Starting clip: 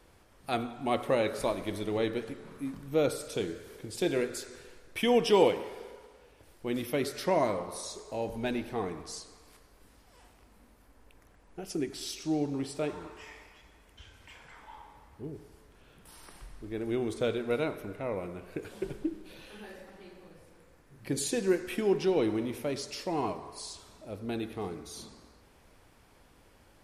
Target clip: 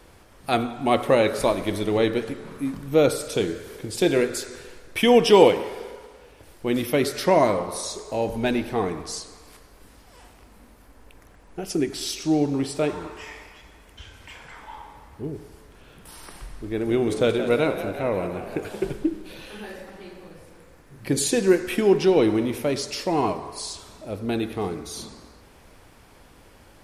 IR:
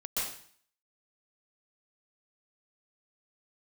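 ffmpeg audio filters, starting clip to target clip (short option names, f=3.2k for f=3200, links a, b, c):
-filter_complex "[0:a]asettb=1/sr,asplit=3[a][b][c];[a]atrim=end=16.674[d];[b]atrim=start=16.67:end=18.89,asetpts=PTS-STARTPTS,afade=t=in:d=0.004:c=qsin,afade=t=out:st=2.216:d=0.004:c=qsin,asplit=8[e][f][g][h][i][j][k][l];[f]adelay=177,afreqshift=51,volume=-11dB[m];[g]adelay=354,afreqshift=102,volume=-15.6dB[n];[h]adelay=531,afreqshift=153,volume=-20.2dB[o];[i]adelay=708,afreqshift=204,volume=-24.7dB[p];[j]adelay=885,afreqshift=255,volume=-29.3dB[q];[k]adelay=1062,afreqshift=306,volume=-33.9dB[r];[l]adelay=1239,afreqshift=357,volume=-38.5dB[s];[e][m][n][o][p][q][r][s]amix=inputs=8:normalize=0,atrim=end_sample=97902[t];[c]atrim=start=18.886[u];[d][t]acrossfade=d=0.004:c1=hsin:c2=qsin[v];[v][u]acrossfade=d=0.004:c1=qsin:c2=hsin,volume=9dB"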